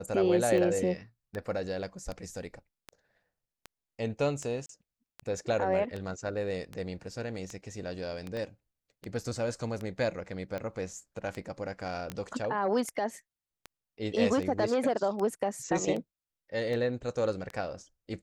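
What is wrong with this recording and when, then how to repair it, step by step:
tick 78 rpm -24 dBFS
4.66–4.69 s: dropout 33 ms
8.37 s: pop -26 dBFS
12.10 s: pop -21 dBFS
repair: de-click; interpolate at 4.66 s, 33 ms

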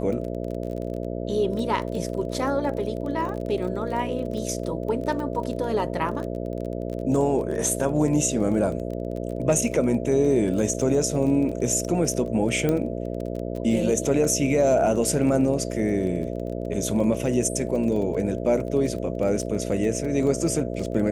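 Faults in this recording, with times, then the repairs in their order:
buzz 60 Hz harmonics 11 -30 dBFS
crackle 24 per s -31 dBFS
12.69 s: pop -12 dBFS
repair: de-click; de-hum 60 Hz, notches 11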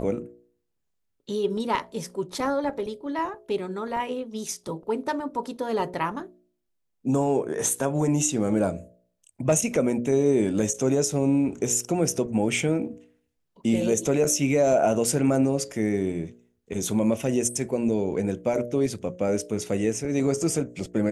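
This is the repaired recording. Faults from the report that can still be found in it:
nothing left

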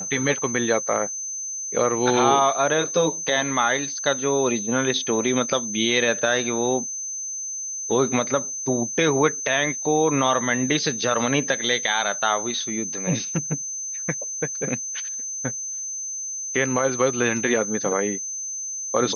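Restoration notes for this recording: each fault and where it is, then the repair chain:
whine 6.2 kHz -28 dBFS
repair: band-stop 6.2 kHz, Q 30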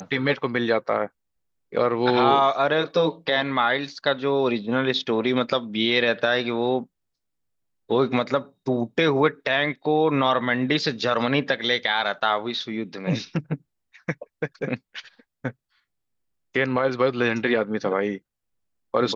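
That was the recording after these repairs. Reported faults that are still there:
nothing left

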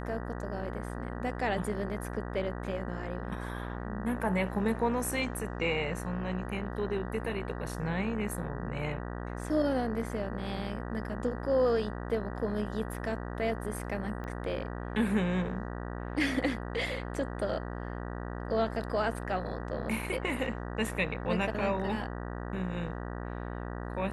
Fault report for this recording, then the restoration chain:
buzz 60 Hz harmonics 32 -38 dBFS
14.24 s: pop -28 dBFS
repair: de-click; de-hum 60 Hz, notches 32

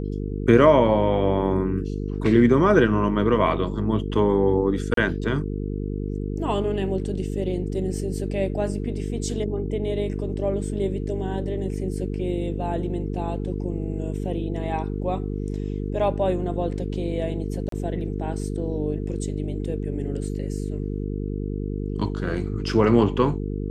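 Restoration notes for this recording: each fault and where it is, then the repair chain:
buzz 50 Hz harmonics 9 -28 dBFS
4.94–4.97 s: dropout 33 ms
17.69–17.72 s: dropout 33 ms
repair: de-hum 50 Hz, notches 9; interpolate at 4.94 s, 33 ms; interpolate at 17.69 s, 33 ms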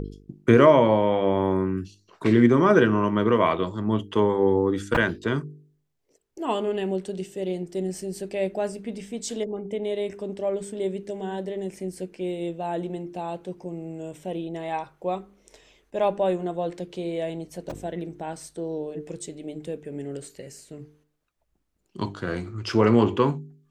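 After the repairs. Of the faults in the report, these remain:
nothing left

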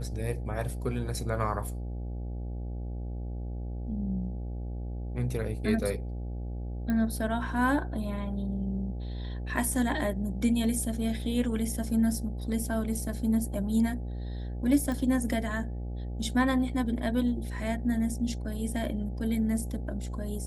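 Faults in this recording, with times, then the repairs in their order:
buzz 60 Hz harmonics 14 -35 dBFS
6.90 s: pop -20 dBFS
14.92 s: pop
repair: de-click; de-hum 60 Hz, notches 14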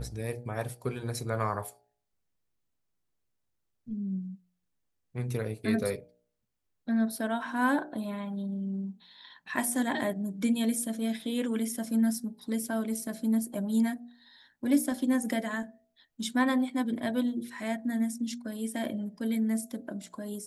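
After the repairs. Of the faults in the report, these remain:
6.90 s: pop

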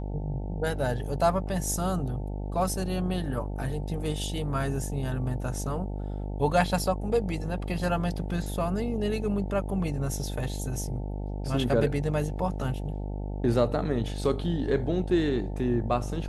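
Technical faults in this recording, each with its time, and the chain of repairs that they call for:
buzz 50 Hz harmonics 18 -33 dBFS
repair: de-hum 50 Hz, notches 18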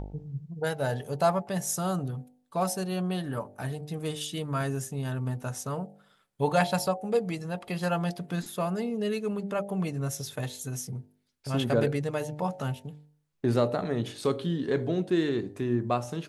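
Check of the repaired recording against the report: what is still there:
nothing left

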